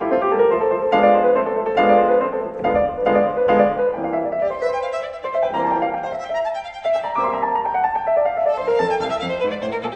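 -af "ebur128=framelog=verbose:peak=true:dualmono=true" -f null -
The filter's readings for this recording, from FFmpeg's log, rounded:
Integrated loudness:
  I:         -16.1 LUFS
  Threshold: -26.1 LUFS
Loudness range:
  LRA:         5.1 LU
  Threshold: -36.5 LUFS
  LRA low:   -19.2 LUFS
  LRA high:  -14.0 LUFS
True peak:
  Peak:       -2.5 dBFS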